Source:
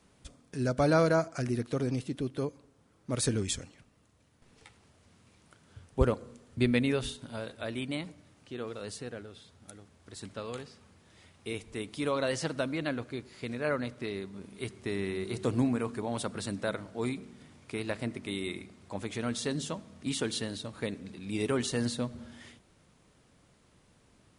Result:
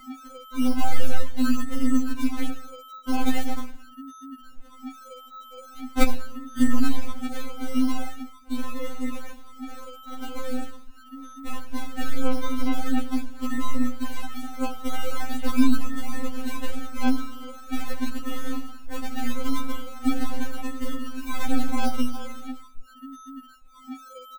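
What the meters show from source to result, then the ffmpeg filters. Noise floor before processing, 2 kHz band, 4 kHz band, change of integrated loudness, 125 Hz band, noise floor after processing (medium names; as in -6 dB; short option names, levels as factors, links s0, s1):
-65 dBFS, +2.0 dB, +1.5 dB, +3.0 dB, no reading, -47 dBFS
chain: -filter_complex "[0:a]aeval=exprs='if(lt(val(0),0),0.708*val(0),val(0))':c=same,agate=range=0.0224:threshold=0.00178:ratio=3:detection=peak,acrossover=split=130|3000[s0][s1][s2];[s1]acompressor=threshold=0.0126:ratio=4[s3];[s0][s3][s2]amix=inputs=3:normalize=0,equalizer=f=690:w=1.5:g=3.5,acrossover=split=220|620|2200[s4][s5][s6][s7];[s4]dynaudnorm=f=130:g=9:m=5.62[s8];[s8][s5][s6][s7]amix=inputs=4:normalize=0,aeval=exprs='val(0)+0.0112*sin(2*PI*1300*n/s)':c=same,aecho=1:1:85|170|255:0.282|0.0733|0.0191,acrusher=samples=39:mix=1:aa=0.000001:lfo=1:lforange=23.4:lforate=0.42,aeval=exprs='0.631*(cos(1*acos(clip(val(0)/0.631,-1,1)))-cos(1*PI/2))+0.0631*(cos(3*acos(clip(val(0)/0.631,-1,1)))-cos(3*PI/2))+0.158*(cos(4*acos(clip(val(0)/0.631,-1,1)))-cos(4*PI/2))+0.0501*(cos(6*acos(clip(val(0)/0.631,-1,1)))-cos(6*PI/2))':c=same,lowshelf=f=170:g=6,bandreject=f=5000:w=9.9,afftfilt=real='re*3.46*eq(mod(b,12),0)':imag='im*3.46*eq(mod(b,12),0)':win_size=2048:overlap=0.75,volume=2.24"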